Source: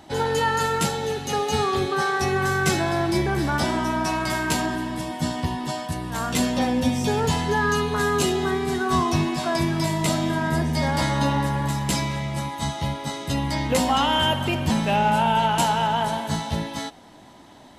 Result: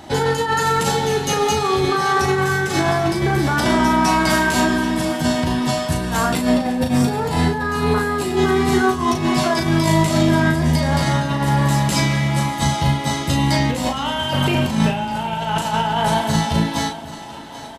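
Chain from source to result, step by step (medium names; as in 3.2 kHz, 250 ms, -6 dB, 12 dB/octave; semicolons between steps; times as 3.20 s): 6.28–8.37 s: graphic EQ with 31 bands 315 Hz +3 dB, 800 Hz +4 dB, 3.15 kHz -6 dB, 6.3 kHz -10 dB; compressor with a negative ratio -24 dBFS, ratio -0.5; doubling 37 ms -5 dB; two-band feedback delay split 390 Hz, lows 269 ms, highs 785 ms, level -15 dB; trim +5.5 dB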